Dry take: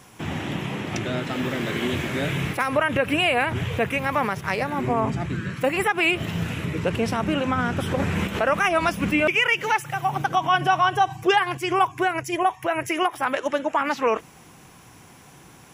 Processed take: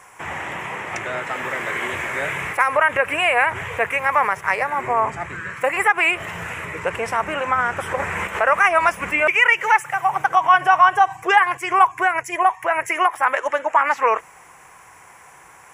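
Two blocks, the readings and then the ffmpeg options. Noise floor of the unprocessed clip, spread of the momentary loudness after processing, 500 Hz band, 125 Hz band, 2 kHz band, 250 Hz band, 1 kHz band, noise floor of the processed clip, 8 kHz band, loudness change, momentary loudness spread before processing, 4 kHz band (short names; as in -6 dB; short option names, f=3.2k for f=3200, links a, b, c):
-49 dBFS, 11 LU, +0.5 dB, -10.5 dB, +6.0 dB, -10.0 dB, +6.0 dB, -47 dBFS, +1.5 dB, +4.5 dB, 8 LU, -2.5 dB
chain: -af "equalizer=f=125:t=o:w=1:g=-5,equalizer=f=250:t=o:w=1:g=-10,equalizer=f=500:t=o:w=1:g=5,equalizer=f=1k:t=o:w=1:g=10,equalizer=f=2k:t=o:w=1:g=12,equalizer=f=4k:t=o:w=1:g=-9,equalizer=f=8k:t=o:w=1:g=10,volume=-4.5dB"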